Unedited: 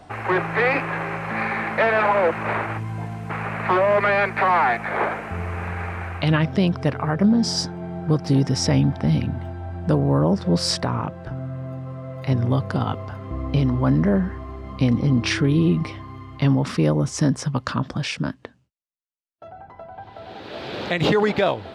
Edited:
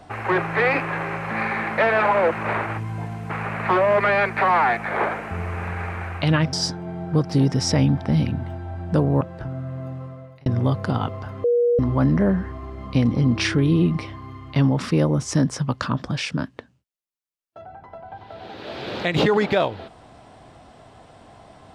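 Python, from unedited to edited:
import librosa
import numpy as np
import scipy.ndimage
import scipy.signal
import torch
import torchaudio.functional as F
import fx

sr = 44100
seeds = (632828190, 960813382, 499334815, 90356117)

y = fx.edit(x, sr, fx.cut(start_s=6.53, length_s=0.95),
    fx.cut(start_s=10.16, length_s=0.91),
    fx.fade_out_span(start_s=11.82, length_s=0.5),
    fx.bleep(start_s=13.3, length_s=0.35, hz=479.0, db=-15.0), tone=tone)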